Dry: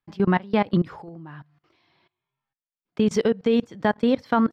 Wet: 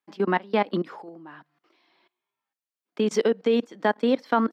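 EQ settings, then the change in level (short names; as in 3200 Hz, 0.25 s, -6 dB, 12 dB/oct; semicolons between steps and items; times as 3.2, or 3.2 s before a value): HPF 240 Hz 24 dB/oct; 0.0 dB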